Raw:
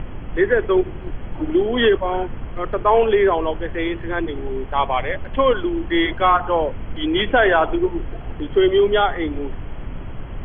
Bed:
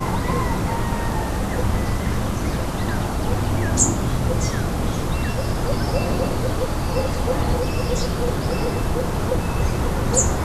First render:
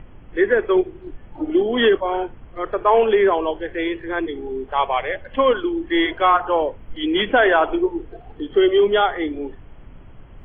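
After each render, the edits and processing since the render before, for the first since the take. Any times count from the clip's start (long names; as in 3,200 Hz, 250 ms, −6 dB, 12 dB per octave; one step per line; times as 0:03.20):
noise reduction from a noise print 12 dB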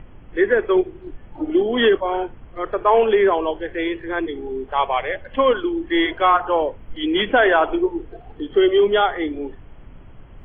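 no processing that can be heard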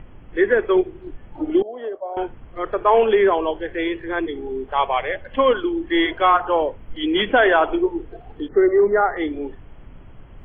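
0:01.62–0:02.17: resonant band-pass 630 Hz, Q 5.5
0:08.48–0:09.17: Chebyshev low-pass filter 2,000 Hz, order 6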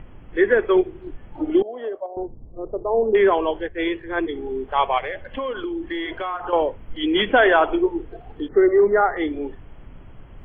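0:02.06–0:03.15: Gaussian smoothing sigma 13 samples
0:03.68–0:04.29: multiband upward and downward expander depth 100%
0:04.98–0:06.53: downward compressor, threshold −24 dBFS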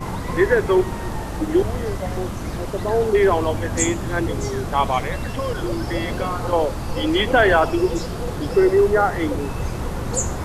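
mix in bed −5 dB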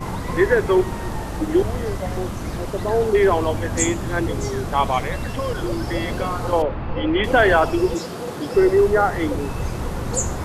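0:06.62–0:07.24: low-pass filter 2,900 Hz 24 dB per octave
0:07.94–0:08.55: high-pass filter 180 Hz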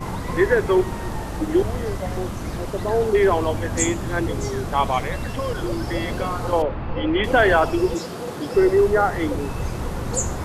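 level −1 dB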